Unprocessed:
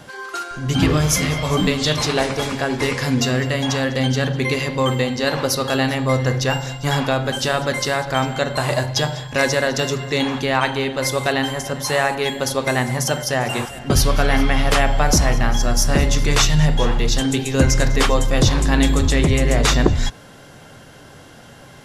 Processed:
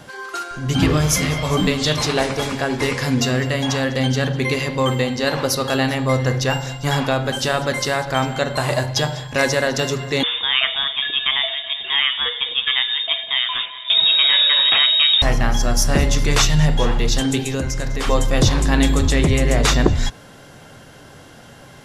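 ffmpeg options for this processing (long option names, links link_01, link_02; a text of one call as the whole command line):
ffmpeg -i in.wav -filter_complex "[0:a]asettb=1/sr,asplit=3[link_01][link_02][link_03];[link_01]atrim=end=10.234[link_04];[link_02]atrim=start=10.23:end=15.22,asetpts=PTS-STARTPTS,afade=type=in:duration=0.004:curve=qsin,afade=type=out:start_time=4.986:duration=0.004:curve=qsin,lowpass=frequency=3200:width_type=q:width=0.5098,lowpass=frequency=3200:width_type=q:width=0.6013,lowpass=frequency=3200:width_type=q:width=0.9,lowpass=frequency=3200:width_type=q:width=2.563,afreqshift=-3800[link_05];[link_03]atrim=start=15.216[link_06];[link_04][link_05]acrossfade=duration=0.004:curve1=hsin:curve2=qsin[link_07];[link_07][link_06]acrossfade=duration=0.004:curve1=qsin:curve2=hsin,asplit=3[link_08][link_09][link_10];[link_08]afade=type=out:start_time=17.48:duration=0.02[link_11];[link_09]acompressor=threshold=-18dB:ratio=12:attack=3.2:release=140:knee=1:detection=peak,afade=type=in:start_time=17.48:duration=0.02,afade=type=out:start_time=18.06:duration=0.02[link_12];[link_10]afade=type=in:start_time=18.06:duration=0.02[link_13];[link_11][link_12][link_13]amix=inputs=3:normalize=0" out.wav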